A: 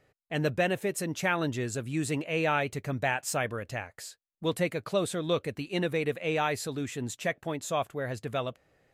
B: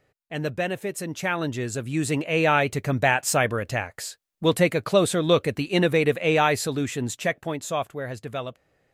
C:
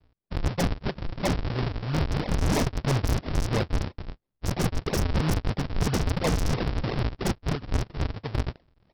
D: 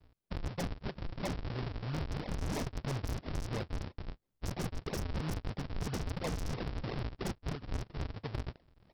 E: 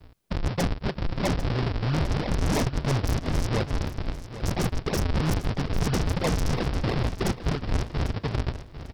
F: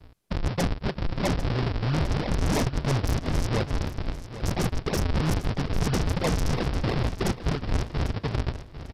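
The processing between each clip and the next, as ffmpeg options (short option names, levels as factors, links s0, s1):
-af "dynaudnorm=f=310:g=13:m=2.82"
-af "equalizer=f=290:t=o:w=1.1:g=-12.5,aresample=11025,acrusher=samples=36:mix=1:aa=0.000001:lfo=1:lforange=57.6:lforate=3,aresample=44100,aeval=exprs='0.0596*(abs(mod(val(0)/0.0596+3,4)-2)-1)':c=same,volume=2.11"
-af "acompressor=threshold=0.0126:ratio=3"
-filter_complex "[0:a]asplit=2[s0][s1];[s1]alimiter=level_in=2.37:limit=0.0631:level=0:latency=1:release=117,volume=0.422,volume=1.26[s2];[s0][s2]amix=inputs=2:normalize=0,asoftclip=type=tanh:threshold=0.075,aecho=1:1:797|1594|2391:0.224|0.0582|0.0151,volume=2.11"
-af "aresample=32000,aresample=44100"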